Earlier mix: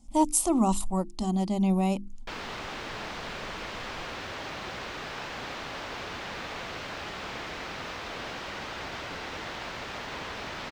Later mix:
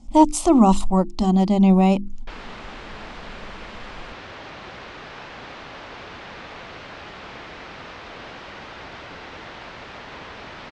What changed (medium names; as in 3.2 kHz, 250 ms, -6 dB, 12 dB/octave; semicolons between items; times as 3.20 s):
speech +10.0 dB; master: add distance through air 99 m